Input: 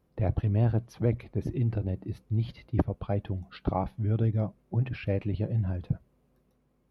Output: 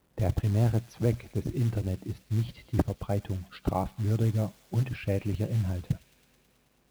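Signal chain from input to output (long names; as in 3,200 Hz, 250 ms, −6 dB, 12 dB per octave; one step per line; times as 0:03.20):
log-companded quantiser 6 bits
on a send: delay with a high-pass on its return 108 ms, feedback 81%, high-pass 2,200 Hz, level −13.5 dB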